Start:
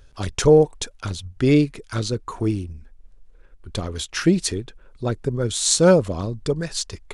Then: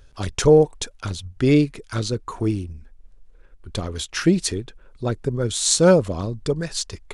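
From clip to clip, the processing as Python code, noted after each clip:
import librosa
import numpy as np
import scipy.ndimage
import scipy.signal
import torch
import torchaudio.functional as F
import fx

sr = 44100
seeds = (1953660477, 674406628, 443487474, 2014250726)

y = x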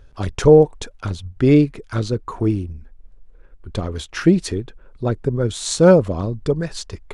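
y = fx.high_shelf(x, sr, hz=2800.0, db=-11.0)
y = y * 10.0 ** (3.5 / 20.0)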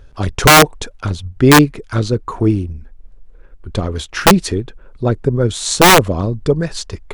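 y = (np.mod(10.0 ** (6.0 / 20.0) * x + 1.0, 2.0) - 1.0) / 10.0 ** (6.0 / 20.0)
y = y * 10.0 ** (5.0 / 20.0)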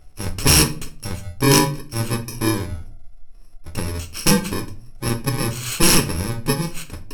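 y = fx.bit_reversed(x, sr, seeds[0], block=64)
y = fx.room_shoebox(y, sr, seeds[1], volume_m3=33.0, walls='mixed', distance_m=0.35)
y = np.interp(np.arange(len(y)), np.arange(len(y))[::2], y[::2])
y = y * 10.0 ** (-7.5 / 20.0)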